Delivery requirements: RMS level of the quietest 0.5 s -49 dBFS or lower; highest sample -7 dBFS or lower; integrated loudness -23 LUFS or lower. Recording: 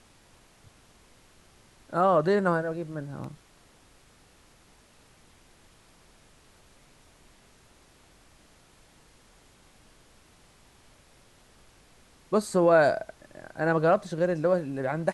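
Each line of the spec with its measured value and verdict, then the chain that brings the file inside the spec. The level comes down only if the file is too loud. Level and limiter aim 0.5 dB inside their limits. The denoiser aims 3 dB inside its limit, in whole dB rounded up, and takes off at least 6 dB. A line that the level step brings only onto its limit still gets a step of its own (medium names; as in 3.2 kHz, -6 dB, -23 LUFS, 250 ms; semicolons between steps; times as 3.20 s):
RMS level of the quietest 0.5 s -58 dBFS: pass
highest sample -10.5 dBFS: pass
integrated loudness -25.5 LUFS: pass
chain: none needed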